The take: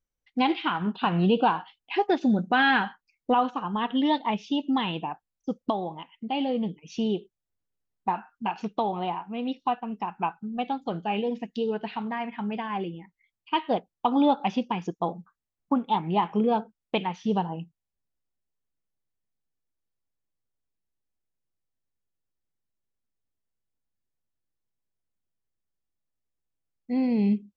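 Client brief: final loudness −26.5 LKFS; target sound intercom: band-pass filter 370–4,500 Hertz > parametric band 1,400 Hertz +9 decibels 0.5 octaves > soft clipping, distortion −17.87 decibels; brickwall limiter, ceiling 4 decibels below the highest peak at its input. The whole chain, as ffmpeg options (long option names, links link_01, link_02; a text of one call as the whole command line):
ffmpeg -i in.wav -af "alimiter=limit=-15.5dB:level=0:latency=1,highpass=370,lowpass=4500,equalizer=frequency=1400:width_type=o:width=0.5:gain=9,asoftclip=threshold=-16.5dB,volume=4dB" out.wav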